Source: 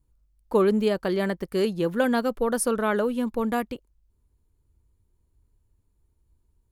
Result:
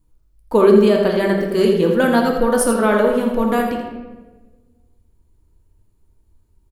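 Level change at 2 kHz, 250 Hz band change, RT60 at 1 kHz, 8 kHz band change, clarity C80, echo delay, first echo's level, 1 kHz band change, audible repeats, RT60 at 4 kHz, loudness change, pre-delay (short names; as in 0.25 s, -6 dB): +8.0 dB, +8.5 dB, 1.1 s, +6.5 dB, 4.5 dB, 83 ms, -8.0 dB, +9.0 dB, 1, 0.80 s, +9.0 dB, 3 ms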